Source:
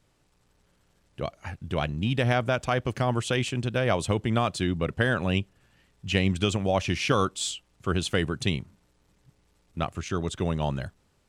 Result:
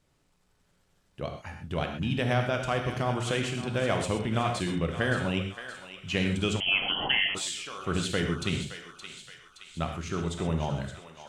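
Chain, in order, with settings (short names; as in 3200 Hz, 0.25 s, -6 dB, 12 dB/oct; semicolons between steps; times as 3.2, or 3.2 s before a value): on a send: thinning echo 0.57 s, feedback 59%, high-pass 1100 Hz, level -9 dB; on the sum: non-linear reverb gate 0.15 s flat, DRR 3.5 dB; 6.6–7.35 inverted band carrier 3200 Hz; gain -4 dB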